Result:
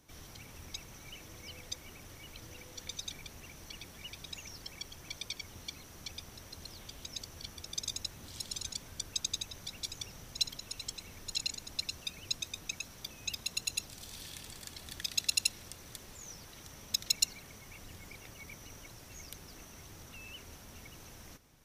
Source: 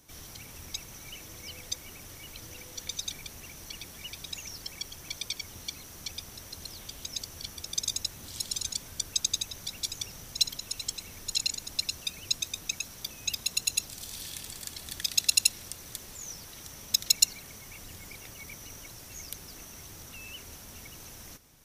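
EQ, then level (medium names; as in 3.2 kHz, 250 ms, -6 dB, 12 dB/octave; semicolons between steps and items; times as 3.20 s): treble shelf 5 kHz -8 dB; -2.5 dB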